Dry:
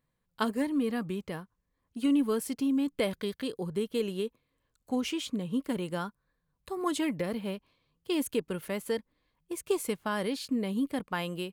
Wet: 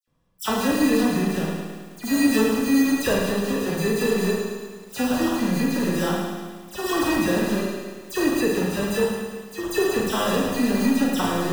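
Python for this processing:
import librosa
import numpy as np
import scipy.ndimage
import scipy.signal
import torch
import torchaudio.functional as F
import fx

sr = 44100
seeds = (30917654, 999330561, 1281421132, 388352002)

p1 = fx.high_shelf(x, sr, hz=5400.0, db=-9.0)
p2 = (np.mod(10.0 ** (31.5 / 20.0) * p1 + 1.0, 2.0) - 1.0) / 10.0 ** (31.5 / 20.0)
p3 = p1 + F.gain(torch.from_numpy(p2), -9.5).numpy()
p4 = fx.sample_hold(p3, sr, seeds[0], rate_hz=2200.0, jitter_pct=0)
p5 = fx.dispersion(p4, sr, late='lows', ms=77.0, hz=3000.0)
p6 = p5 + fx.echo_feedback(p5, sr, ms=109, feedback_pct=57, wet_db=-6, dry=0)
p7 = fx.rev_schroeder(p6, sr, rt60_s=0.44, comb_ms=33, drr_db=0.5)
p8 = fx.echo_crushed(p7, sr, ms=178, feedback_pct=55, bits=8, wet_db=-13.0)
y = F.gain(torch.from_numpy(p8), 5.5).numpy()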